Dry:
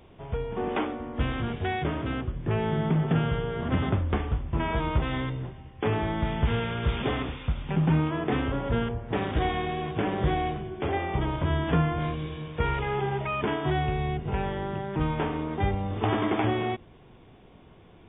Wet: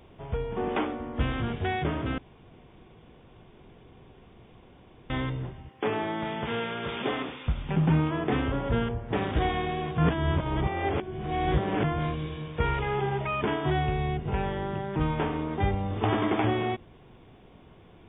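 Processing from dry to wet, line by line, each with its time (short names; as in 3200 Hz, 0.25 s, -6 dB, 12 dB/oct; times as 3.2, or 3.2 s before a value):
2.18–5.1 room tone
5.69–7.47 HPF 230 Hz
9.98–11.84 reverse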